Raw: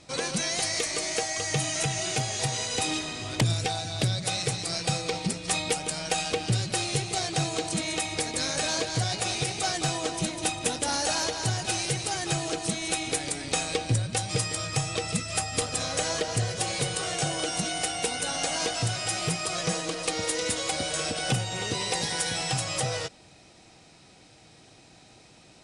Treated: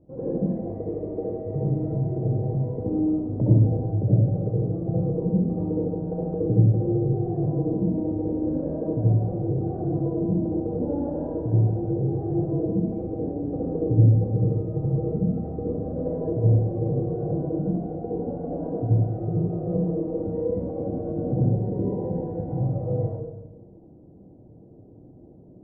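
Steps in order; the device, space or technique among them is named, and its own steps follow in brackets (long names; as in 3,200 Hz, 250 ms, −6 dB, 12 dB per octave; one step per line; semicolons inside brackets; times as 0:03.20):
next room (low-pass filter 510 Hz 24 dB per octave; convolution reverb RT60 1.1 s, pre-delay 62 ms, DRR −6.5 dB)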